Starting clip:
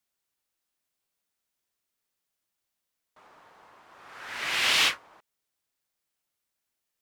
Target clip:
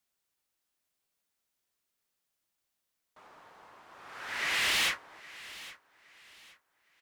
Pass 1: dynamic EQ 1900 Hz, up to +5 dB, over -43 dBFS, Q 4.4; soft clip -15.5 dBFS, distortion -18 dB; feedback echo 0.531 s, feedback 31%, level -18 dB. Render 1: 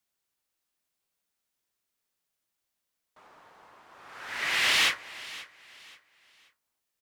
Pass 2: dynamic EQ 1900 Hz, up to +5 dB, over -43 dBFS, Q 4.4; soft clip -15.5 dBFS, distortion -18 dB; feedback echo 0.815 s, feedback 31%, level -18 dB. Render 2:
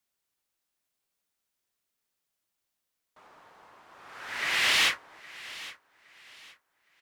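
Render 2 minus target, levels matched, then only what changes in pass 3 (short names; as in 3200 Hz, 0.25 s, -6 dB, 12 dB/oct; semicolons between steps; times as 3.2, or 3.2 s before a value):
soft clip: distortion -10 dB
change: soft clip -25 dBFS, distortion -8 dB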